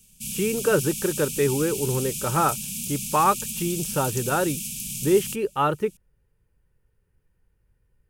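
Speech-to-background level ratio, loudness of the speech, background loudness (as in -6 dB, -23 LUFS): 4.5 dB, -25.0 LUFS, -29.5 LUFS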